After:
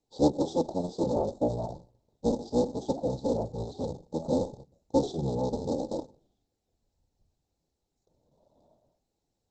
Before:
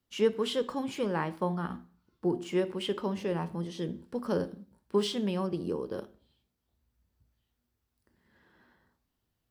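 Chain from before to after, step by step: cycle switcher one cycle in 3, inverted; Chebyshev band-stop 1.3–4.7 kHz, order 4; peaking EQ 760 Hz +8 dB 0.96 oct; formant shift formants -6 st; Opus 12 kbps 48 kHz

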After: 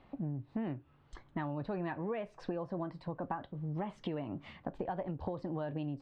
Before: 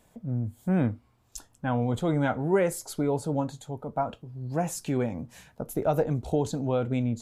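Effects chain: low-pass 2.8 kHz 24 dB/octave; compression 10:1, threshold -36 dBFS, peak gain reduction 17.5 dB; tape speed +20%; trim +1.5 dB

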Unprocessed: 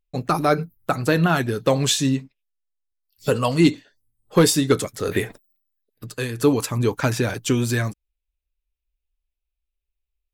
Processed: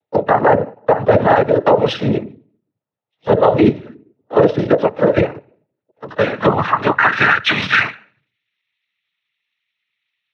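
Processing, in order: on a send at -17 dB: reverberation RT60 0.45 s, pre-delay 6 ms; on the sum: band-pass sweep 580 Hz -> 2.4 kHz, 5.85–7.86 s; in parallel at +2 dB: compression, threshold -37 dBFS, peak gain reduction 19.5 dB; on the sum: bass shelf 460 Hz -4 dB; LPC vocoder at 8 kHz whisper; noise-vocoded speech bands 12; vibrato 12 Hz 34 cents; loudness maximiser +20.5 dB; trim -1 dB

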